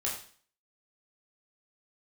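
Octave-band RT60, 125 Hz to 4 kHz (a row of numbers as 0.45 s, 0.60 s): 0.50 s, 0.50 s, 0.45 s, 0.45 s, 0.45 s, 0.50 s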